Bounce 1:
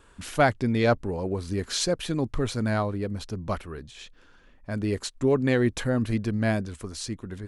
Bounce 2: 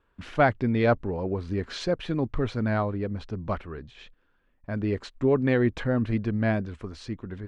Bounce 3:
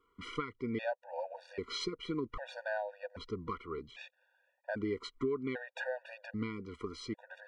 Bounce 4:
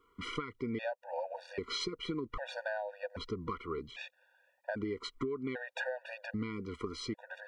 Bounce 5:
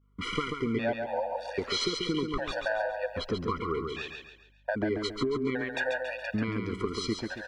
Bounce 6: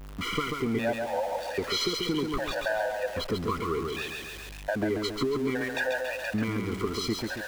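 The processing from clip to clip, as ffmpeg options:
-af "lowpass=2.8k,agate=range=-13dB:threshold=-50dB:ratio=16:detection=peak"
-af "bass=f=250:g=-15,treble=f=4k:g=-3,acompressor=threshold=-34dB:ratio=5,afftfilt=real='re*gt(sin(2*PI*0.63*pts/sr)*(1-2*mod(floor(b*sr/1024/480),2)),0)':imag='im*gt(sin(2*PI*0.63*pts/sr)*(1-2*mod(floor(b*sr/1024/480),2)),0)':win_size=1024:overlap=0.75,volume=2.5dB"
-af "acompressor=threshold=-38dB:ratio=5,volume=4.5dB"
-af "agate=range=-33dB:threshold=-57dB:ratio=3:detection=peak,aeval=exprs='val(0)+0.000282*(sin(2*PI*50*n/s)+sin(2*PI*2*50*n/s)/2+sin(2*PI*3*50*n/s)/3+sin(2*PI*4*50*n/s)/4+sin(2*PI*5*50*n/s)/5)':c=same,aecho=1:1:138|276|414|552|690:0.562|0.219|0.0855|0.0334|0.013,volume=6.5dB"
-af "aeval=exprs='val(0)+0.5*0.015*sgn(val(0))':c=same"

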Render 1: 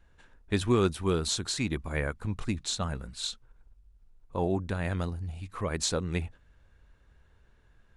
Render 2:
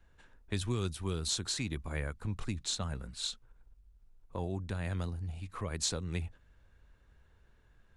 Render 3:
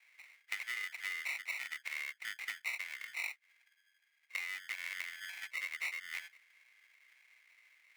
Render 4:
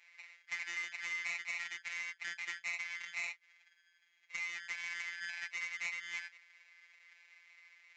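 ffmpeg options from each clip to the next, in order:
-filter_complex "[0:a]acrossover=split=140|3000[a][b][c];[b]acompressor=threshold=-36dB:ratio=3[d];[a][d][c]amix=inputs=3:normalize=0,volume=-2.5dB"
-af "acrusher=samples=27:mix=1:aa=0.000001,highpass=f=2.1k:t=q:w=9.5,acompressor=threshold=-45dB:ratio=5,volume=7dB"
-af "aresample=16000,asoftclip=type=tanh:threshold=-37.5dB,aresample=44100,afftfilt=real='hypot(re,im)*cos(PI*b)':imag='0':win_size=1024:overlap=0.75,volume=7dB"

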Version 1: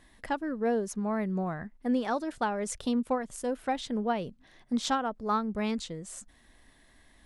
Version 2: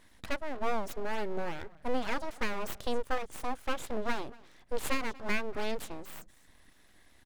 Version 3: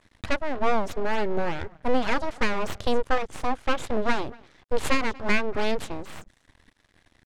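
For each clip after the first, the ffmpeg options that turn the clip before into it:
-af "aecho=1:1:236:0.0708,aeval=exprs='abs(val(0))':c=same"
-af "equalizer=f=88:t=o:w=0.77:g=8,aeval=exprs='sgn(val(0))*max(abs(val(0))-0.00141,0)':c=same,adynamicsmooth=sensitivity=8:basefreq=7.5k,volume=8.5dB"

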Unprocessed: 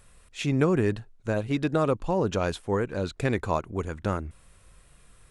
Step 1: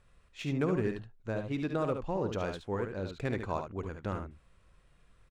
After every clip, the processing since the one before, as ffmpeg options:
-af "adynamicsmooth=sensitivity=4:basefreq=5.1k,aecho=1:1:54|72:0.188|0.447,volume=-8dB"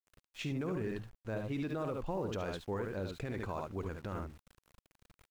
-af "alimiter=level_in=4.5dB:limit=-24dB:level=0:latency=1:release=36,volume=-4.5dB,aeval=exprs='val(0)*gte(abs(val(0)),0.00168)':c=same"

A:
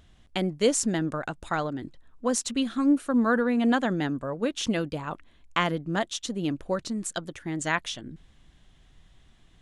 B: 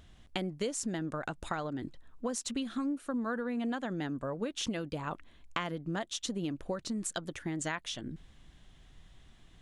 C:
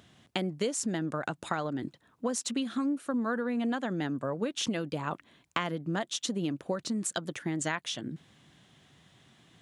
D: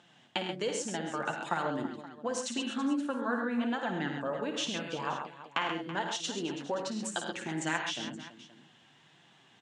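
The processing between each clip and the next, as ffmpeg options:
-af "acompressor=threshold=-32dB:ratio=6"
-af "highpass=f=110:w=0.5412,highpass=f=110:w=1.3066,volume=3.5dB"
-af "flanger=delay=5.7:depth=3.3:regen=32:speed=1.3:shape=sinusoidal,highpass=170,equalizer=f=860:t=q:w=4:g=8,equalizer=f=1.6k:t=q:w=4:g=5,equalizer=f=2.8k:t=q:w=4:g=6,lowpass=f=8.3k:w=0.5412,lowpass=f=8.3k:w=1.3066,aecho=1:1:55|82|104|132|329|524:0.355|0.266|0.335|0.398|0.2|0.133"

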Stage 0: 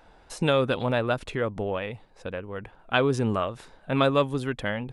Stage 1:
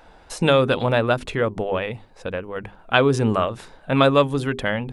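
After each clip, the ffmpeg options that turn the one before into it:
-af "bandreject=f=50:t=h:w=6,bandreject=f=100:t=h:w=6,bandreject=f=150:t=h:w=6,bandreject=f=200:t=h:w=6,bandreject=f=250:t=h:w=6,bandreject=f=300:t=h:w=6,bandreject=f=350:t=h:w=6,bandreject=f=400:t=h:w=6,volume=6dB"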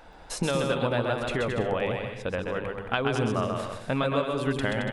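-filter_complex "[0:a]acompressor=threshold=-24dB:ratio=5,asplit=2[a][b];[b]aecho=0:1:130|221|284.7|329.3|360.5:0.631|0.398|0.251|0.158|0.1[c];[a][c]amix=inputs=2:normalize=0,volume=-1dB"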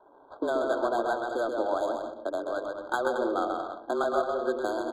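-af "highpass=f=180:t=q:w=0.5412,highpass=f=180:t=q:w=1.307,lowpass=f=2.6k:t=q:w=0.5176,lowpass=f=2.6k:t=q:w=0.7071,lowpass=f=2.6k:t=q:w=1.932,afreqshift=110,adynamicsmooth=sensitivity=5:basefreq=580,afftfilt=real='re*eq(mod(floor(b*sr/1024/1600),2),0)':imag='im*eq(mod(floor(b*sr/1024/1600),2),0)':win_size=1024:overlap=0.75"

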